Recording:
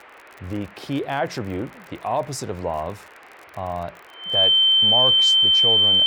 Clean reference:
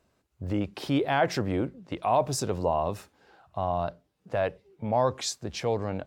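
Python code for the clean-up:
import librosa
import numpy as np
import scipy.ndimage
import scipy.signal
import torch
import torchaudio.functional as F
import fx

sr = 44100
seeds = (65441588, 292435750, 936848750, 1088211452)

y = fx.fix_declick_ar(x, sr, threshold=6.5)
y = fx.notch(y, sr, hz=3100.0, q=30.0)
y = fx.noise_reduce(y, sr, print_start_s=3.04, print_end_s=3.54, reduce_db=23.0)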